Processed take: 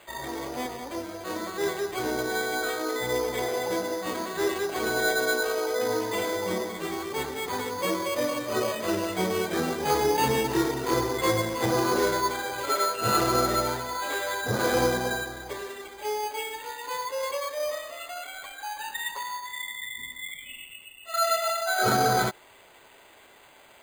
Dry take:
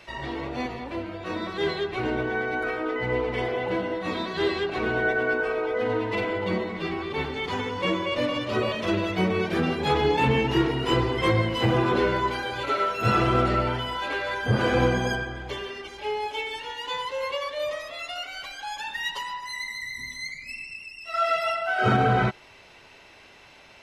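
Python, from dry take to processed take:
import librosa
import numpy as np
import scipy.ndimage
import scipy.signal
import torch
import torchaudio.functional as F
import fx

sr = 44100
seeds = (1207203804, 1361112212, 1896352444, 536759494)

y = fx.bass_treble(x, sr, bass_db=-9, treble_db=-14)
y = np.repeat(scipy.signal.resample_poly(y, 1, 8), 8)[:len(y)]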